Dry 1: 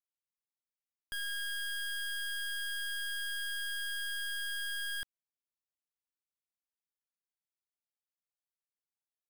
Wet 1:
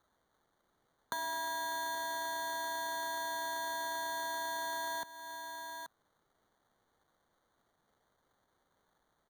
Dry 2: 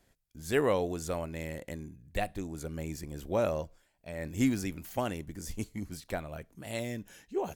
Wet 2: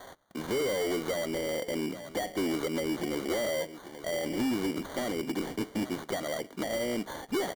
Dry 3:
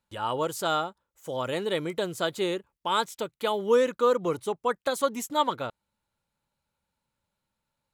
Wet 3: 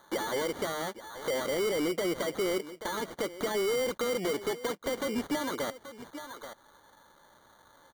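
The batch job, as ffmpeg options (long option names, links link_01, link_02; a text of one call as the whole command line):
ffmpeg -i in.wav -filter_complex "[0:a]lowshelf=frequency=330:gain=-7.5,asplit=2[link_01][link_02];[link_02]highpass=frequency=720:poles=1,volume=32dB,asoftclip=type=tanh:threshold=-11.5dB[link_03];[link_01][link_03]amix=inputs=2:normalize=0,lowpass=frequency=1200:poles=1,volume=-6dB,highpass=260,acompressor=threshold=-28dB:ratio=4,asplit=2[link_04][link_05];[link_05]aecho=0:1:831:0.133[link_06];[link_04][link_06]amix=inputs=2:normalize=0,acrossover=split=430[link_07][link_08];[link_08]acompressor=threshold=-50dB:ratio=2.5[link_09];[link_07][link_09]amix=inputs=2:normalize=0,highshelf=frequency=6700:gain=-5.5,acrusher=samples=17:mix=1:aa=0.000001,asoftclip=type=hard:threshold=-32.5dB,volume=6.5dB" out.wav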